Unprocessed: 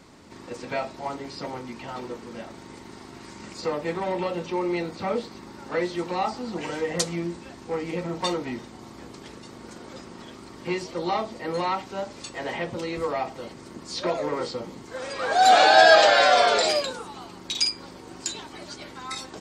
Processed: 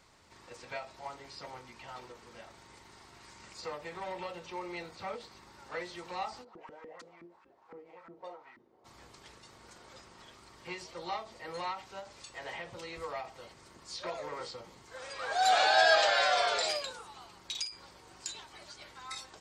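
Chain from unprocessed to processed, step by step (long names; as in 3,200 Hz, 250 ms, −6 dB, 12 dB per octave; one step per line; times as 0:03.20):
parametric band 250 Hz −13.5 dB 1.7 octaves
0:06.43–0:08.84: auto-filter band-pass saw up 8.4 Hz → 1.4 Hz 260–1,500 Hz
every ending faded ahead of time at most 140 dB per second
level −7.5 dB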